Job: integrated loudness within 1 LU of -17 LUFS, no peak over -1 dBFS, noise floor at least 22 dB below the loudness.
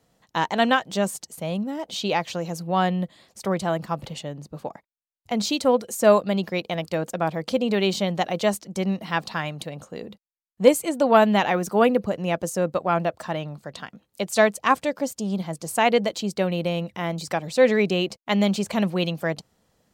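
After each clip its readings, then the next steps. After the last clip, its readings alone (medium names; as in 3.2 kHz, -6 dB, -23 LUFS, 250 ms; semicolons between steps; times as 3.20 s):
loudness -23.5 LUFS; peak level -3.5 dBFS; loudness target -17.0 LUFS
-> trim +6.5 dB; peak limiter -1 dBFS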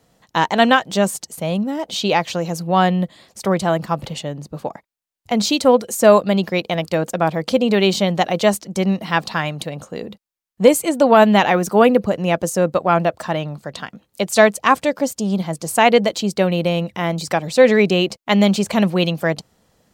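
loudness -17.5 LUFS; peak level -1.0 dBFS; noise floor -70 dBFS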